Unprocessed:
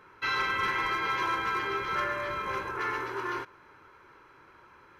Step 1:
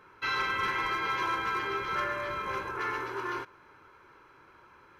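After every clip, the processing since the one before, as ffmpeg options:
ffmpeg -i in.wav -af "bandreject=frequency=1900:width=18,volume=-1dB" out.wav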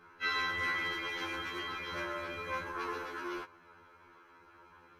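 ffmpeg -i in.wav -af "afftfilt=real='re*2*eq(mod(b,4),0)':imag='im*2*eq(mod(b,4),0)':win_size=2048:overlap=0.75" out.wav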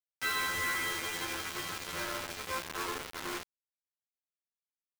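ffmpeg -i in.wav -af "acrusher=bits=5:mix=0:aa=0.000001" out.wav

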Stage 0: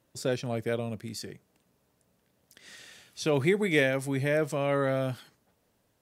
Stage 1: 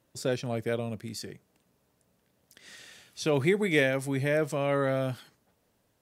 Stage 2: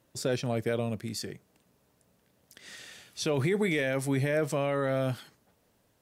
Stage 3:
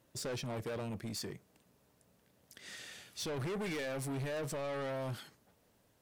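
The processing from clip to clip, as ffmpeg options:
ffmpeg -i in.wav -af anull out.wav
ffmpeg -i in.wav -af "alimiter=limit=-21dB:level=0:latency=1:release=17,volume=2.5dB" out.wav
ffmpeg -i in.wav -af "asoftclip=type=tanh:threshold=-34dB,volume=-1.5dB" out.wav

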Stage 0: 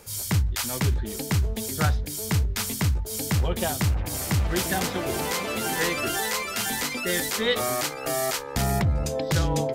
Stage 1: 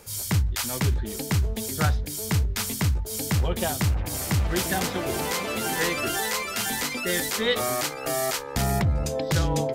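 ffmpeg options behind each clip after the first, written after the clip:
ffmpeg -i in.wav -af anull out.wav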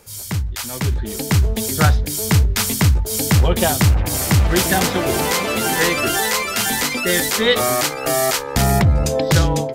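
ffmpeg -i in.wav -af "dynaudnorm=framelen=720:gausssize=3:maxgain=11.5dB" out.wav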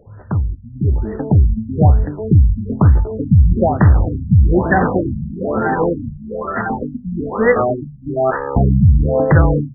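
ffmpeg -i in.wav -af "afftfilt=real='re*lt(b*sr/1024,220*pow(2000/220,0.5+0.5*sin(2*PI*1.1*pts/sr)))':imag='im*lt(b*sr/1024,220*pow(2000/220,0.5+0.5*sin(2*PI*1.1*pts/sr)))':win_size=1024:overlap=0.75,volume=4.5dB" out.wav

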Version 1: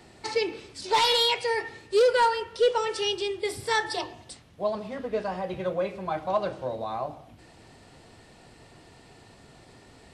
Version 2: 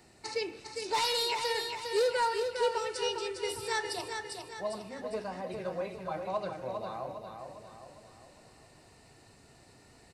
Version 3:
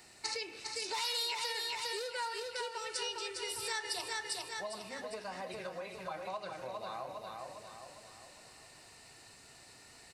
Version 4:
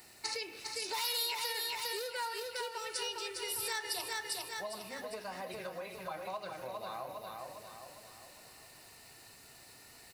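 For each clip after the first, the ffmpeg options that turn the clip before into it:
ffmpeg -i in.wav -filter_complex "[0:a]highshelf=frequency=5300:gain=8,bandreject=frequency=3300:width=6.5,asplit=2[link_01][link_02];[link_02]aecho=0:1:405|810|1215|1620|2025|2430:0.501|0.236|0.111|0.052|0.0245|0.0115[link_03];[link_01][link_03]amix=inputs=2:normalize=0,volume=-8dB" out.wav
ffmpeg -i in.wav -af "acompressor=threshold=-37dB:ratio=6,tiltshelf=frequency=830:gain=-6.5" out.wav
ffmpeg -i in.wav -af "aexciter=amount=7.7:drive=2.8:freq=11000" out.wav

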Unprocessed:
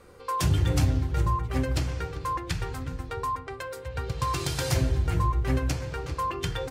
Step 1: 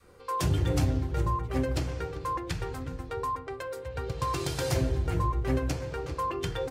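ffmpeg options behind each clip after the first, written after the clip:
ffmpeg -i in.wav -af "adynamicequalizer=threshold=0.00794:dfrequency=440:dqfactor=0.72:tfrequency=440:tqfactor=0.72:attack=5:release=100:ratio=0.375:range=3:mode=boostabove:tftype=bell,volume=-4dB" out.wav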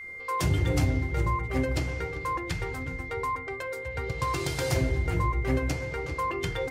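ffmpeg -i in.wav -af "aeval=exprs='val(0)+0.0112*sin(2*PI*2100*n/s)':channel_layout=same,volume=1dB" out.wav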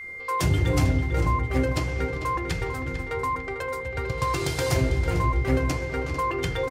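ffmpeg -i in.wav -filter_complex "[0:a]asplit=2[link_01][link_02];[link_02]adelay=447,lowpass=frequency=4200:poles=1,volume=-10dB,asplit=2[link_03][link_04];[link_04]adelay=447,lowpass=frequency=4200:poles=1,volume=0.42,asplit=2[link_05][link_06];[link_06]adelay=447,lowpass=frequency=4200:poles=1,volume=0.42,asplit=2[link_07][link_08];[link_08]adelay=447,lowpass=frequency=4200:poles=1,volume=0.42[link_09];[link_01][link_03][link_05][link_07][link_09]amix=inputs=5:normalize=0,volume=3dB" out.wav

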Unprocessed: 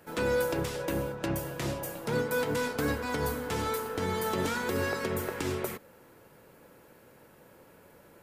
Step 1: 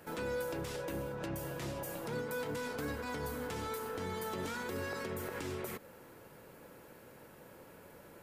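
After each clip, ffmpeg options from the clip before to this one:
ffmpeg -i in.wav -af "alimiter=level_in=8.5dB:limit=-24dB:level=0:latency=1:release=141,volume=-8.5dB,volume=1dB" out.wav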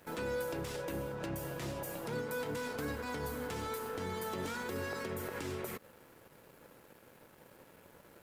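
ffmpeg -i in.wav -af "aeval=exprs='sgn(val(0))*max(abs(val(0))-0.00106,0)':channel_layout=same,volume=1dB" out.wav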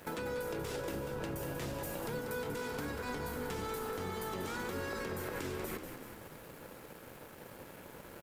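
ffmpeg -i in.wav -filter_complex "[0:a]acompressor=threshold=-44dB:ratio=6,asplit=8[link_01][link_02][link_03][link_04][link_05][link_06][link_07][link_08];[link_02]adelay=190,afreqshift=-52,volume=-8dB[link_09];[link_03]adelay=380,afreqshift=-104,volume=-13dB[link_10];[link_04]adelay=570,afreqshift=-156,volume=-18.1dB[link_11];[link_05]adelay=760,afreqshift=-208,volume=-23.1dB[link_12];[link_06]adelay=950,afreqshift=-260,volume=-28.1dB[link_13];[link_07]adelay=1140,afreqshift=-312,volume=-33.2dB[link_14];[link_08]adelay=1330,afreqshift=-364,volume=-38.2dB[link_15];[link_01][link_09][link_10][link_11][link_12][link_13][link_14][link_15]amix=inputs=8:normalize=0,volume=7dB" out.wav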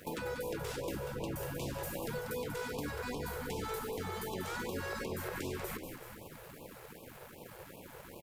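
ffmpeg -i in.wav -af "afftfilt=real='re*(1-between(b*sr/1024,220*pow(1700/220,0.5+0.5*sin(2*PI*2.6*pts/sr))/1.41,220*pow(1700/220,0.5+0.5*sin(2*PI*2.6*pts/sr))*1.41))':imag='im*(1-between(b*sr/1024,220*pow(1700/220,0.5+0.5*sin(2*PI*2.6*pts/sr))/1.41,220*pow(1700/220,0.5+0.5*sin(2*PI*2.6*pts/sr))*1.41))':win_size=1024:overlap=0.75,volume=1dB" out.wav

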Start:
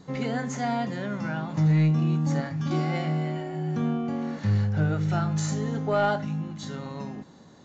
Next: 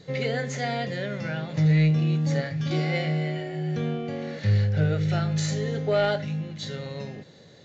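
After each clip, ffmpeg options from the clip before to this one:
ffmpeg -i in.wav -af "equalizer=frequency=125:width_type=o:width=1:gain=8,equalizer=frequency=250:width_type=o:width=1:gain=-7,equalizer=frequency=500:width_type=o:width=1:gain=12,equalizer=frequency=1000:width_type=o:width=1:gain=-10,equalizer=frequency=2000:width_type=o:width=1:gain=9,equalizer=frequency=4000:width_type=o:width=1:gain=9,volume=-3dB" out.wav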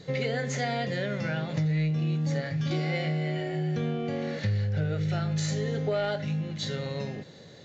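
ffmpeg -i in.wav -af "acompressor=threshold=-28dB:ratio=4,volume=2dB" out.wav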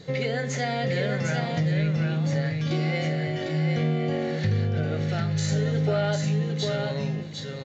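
ffmpeg -i in.wav -af "aecho=1:1:752:0.596,volume=2dB" out.wav

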